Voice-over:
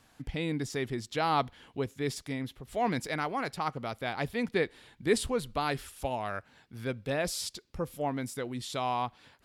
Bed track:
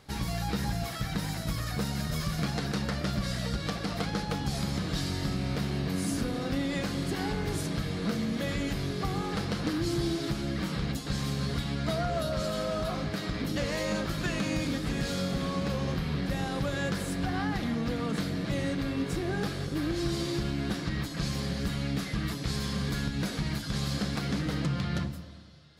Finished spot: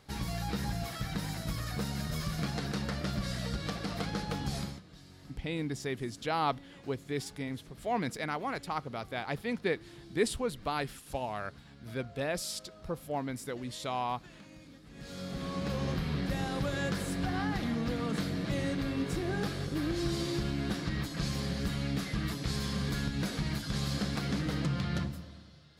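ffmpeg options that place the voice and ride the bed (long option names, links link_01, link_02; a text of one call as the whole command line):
ffmpeg -i stem1.wav -i stem2.wav -filter_complex "[0:a]adelay=5100,volume=-2.5dB[link_01];[1:a]volume=17dB,afade=type=out:start_time=4.57:duration=0.24:silence=0.112202,afade=type=in:start_time=14.9:duration=0.94:silence=0.0944061[link_02];[link_01][link_02]amix=inputs=2:normalize=0" out.wav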